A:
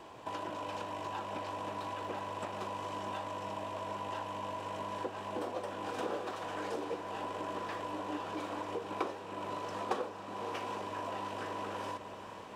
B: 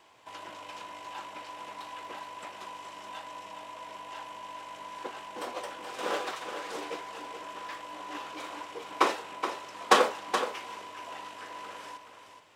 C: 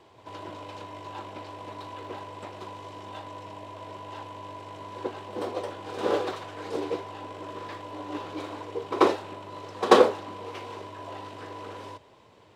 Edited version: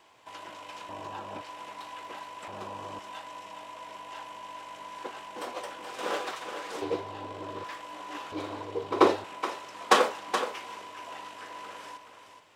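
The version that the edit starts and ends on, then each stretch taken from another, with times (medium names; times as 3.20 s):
B
0.89–1.41 s: from A
2.48–2.99 s: from A
6.82–7.64 s: from C
8.32–9.24 s: from C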